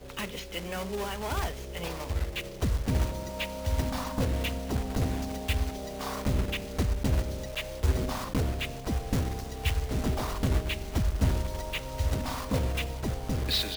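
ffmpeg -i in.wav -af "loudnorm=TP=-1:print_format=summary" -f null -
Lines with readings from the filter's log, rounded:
Input Integrated:    -31.4 LUFS
Input True Peak:     -14.0 dBTP
Input LRA:             1.9 LU
Input Threshold:     -41.4 LUFS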